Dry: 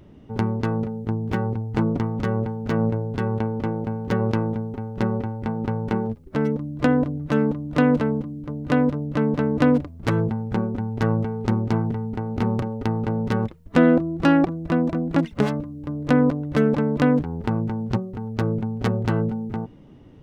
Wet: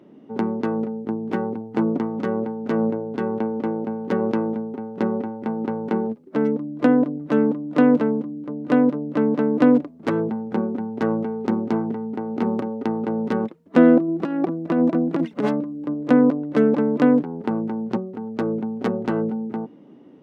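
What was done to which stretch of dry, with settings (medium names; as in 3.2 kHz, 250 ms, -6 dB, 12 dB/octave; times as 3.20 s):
14.08–15.94 s: compressor with a negative ratio -20 dBFS, ratio -0.5
whole clip: high-pass 230 Hz 24 dB/octave; tilt EQ -2.5 dB/octave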